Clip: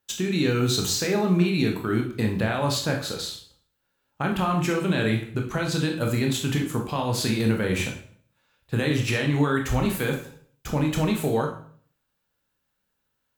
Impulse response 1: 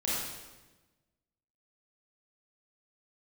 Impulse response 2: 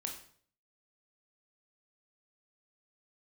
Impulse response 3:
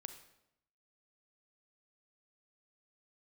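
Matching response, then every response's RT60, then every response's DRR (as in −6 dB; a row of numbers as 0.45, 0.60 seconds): 2; 1.2, 0.55, 0.80 seconds; −8.0, 1.5, 8.0 decibels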